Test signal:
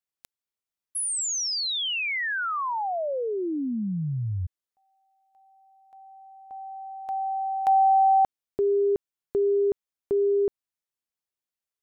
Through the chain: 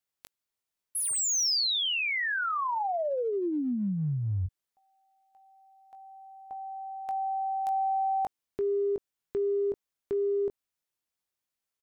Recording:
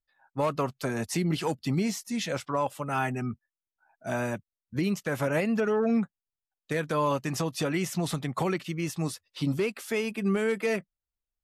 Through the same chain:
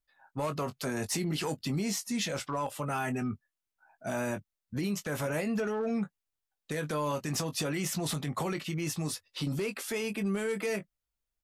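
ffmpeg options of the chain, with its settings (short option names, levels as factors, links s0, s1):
-filter_complex "[0:a]asplit=2[s0][s1];[s1]adelay=20,volume=0.316[s2];[s0][s2]amix=inputs=2:normalize=0,acrossover=split=5300[s3][s4];[s3]acompressor=threshold=0.0355:ratio=6:attack=0.18:release=93:knee=6:detection=peak[s5];[s4]asoftclip=type=hard:threshold=0.0251[s6];[s5][s6]amix=inputs=2:normalize=0,volume=1.33"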